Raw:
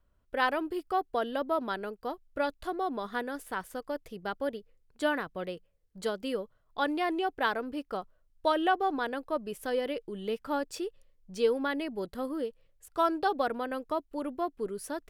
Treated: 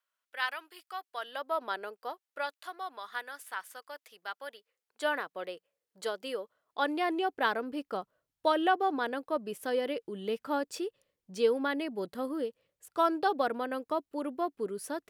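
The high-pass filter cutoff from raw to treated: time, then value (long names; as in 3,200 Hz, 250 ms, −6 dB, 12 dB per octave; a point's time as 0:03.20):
0:01.06 1,500 Hz
0:01.75 470 Hz
0:02.71 1,100 Hz
0:04.53 1,100 Hz
0:05.17 450 Hz
0:06.40 450 Hz
0:07.42 160 Hz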